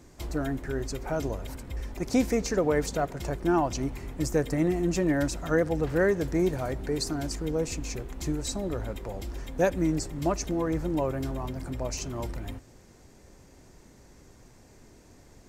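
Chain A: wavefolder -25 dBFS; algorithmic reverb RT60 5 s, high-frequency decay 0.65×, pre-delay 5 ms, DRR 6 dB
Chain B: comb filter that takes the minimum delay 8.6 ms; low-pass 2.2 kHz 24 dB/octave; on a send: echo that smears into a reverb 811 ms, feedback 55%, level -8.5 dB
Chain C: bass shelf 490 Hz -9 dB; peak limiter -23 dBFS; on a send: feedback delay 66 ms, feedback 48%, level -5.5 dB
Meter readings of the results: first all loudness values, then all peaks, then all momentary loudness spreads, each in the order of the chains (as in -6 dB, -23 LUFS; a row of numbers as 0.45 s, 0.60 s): -32.0 LUFS, -31.5 LUFS, -34.0 LUFS; -18.5 dBFS, -14.0 dBFS, -19.0 dBFS; 7 LU, 15 LU, 9 LU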